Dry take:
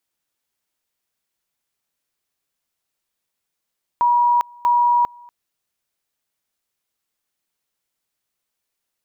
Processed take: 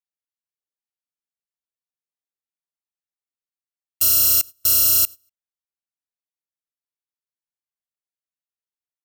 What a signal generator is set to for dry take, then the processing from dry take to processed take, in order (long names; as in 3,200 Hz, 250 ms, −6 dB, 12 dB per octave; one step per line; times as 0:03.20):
tone at two levels in turn 962 Hz −12.5 dBFS, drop 27.5 dB, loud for 0.40 s, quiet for 0.24 s, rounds 2
samples in bit-reversed order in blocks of 256 samples
noise gate −28 dBFS, range −21 dB